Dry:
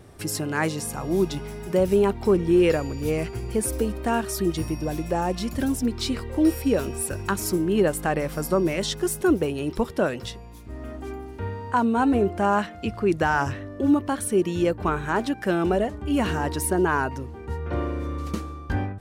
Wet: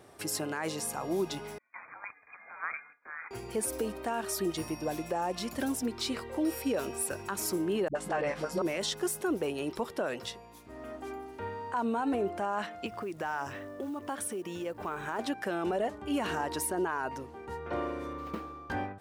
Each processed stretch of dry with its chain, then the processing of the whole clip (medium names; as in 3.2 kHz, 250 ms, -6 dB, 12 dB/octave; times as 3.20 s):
1.58–3.31 s: gate with hold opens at -20 dBFS, closes at -25 dBFS + brick-wall FIR high-pass 1.5 kHz + frequency inversion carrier 4 kHz
7.88–8.62 s: low-pass 5.7 kHz + doubling 15 ms -6 dB + phase dispersion highs, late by 71 ms, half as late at 310 Hz
12.86–15.19 s: band-stop 4.2 kHz, Q 10 + compression 8:1, threshold -27 dBFS + short-mantissa float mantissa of 4-bit
18.13–18.70 s: median filter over 9 samples + peaking EQ 8.7 kHz -9 dB 1.2 oct
whole clip: high-pass 390 Hz 6 dB/octave; peaking EQ 770 Hz +3.5 dB 1.4 oct; peak limiter -19 dBFS; trim -3.5 dB